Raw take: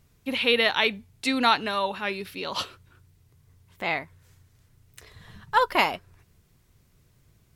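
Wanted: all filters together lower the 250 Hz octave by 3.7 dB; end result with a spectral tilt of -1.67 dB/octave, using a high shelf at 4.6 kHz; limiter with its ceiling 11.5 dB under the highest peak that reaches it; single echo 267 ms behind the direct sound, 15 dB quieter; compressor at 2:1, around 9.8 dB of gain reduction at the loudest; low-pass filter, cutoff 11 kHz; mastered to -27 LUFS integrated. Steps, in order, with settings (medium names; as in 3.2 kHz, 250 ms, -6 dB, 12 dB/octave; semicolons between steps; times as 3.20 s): low-pass 11 kHz; peaking EQ 250 Hz -4 dB; treble shelf 4.6 kHz -4.5 dB; compression 2:1, threshold -34 dBFS; peak limiter -27.5 dBFS; delay 267 ms -15 dB; trim +12 dB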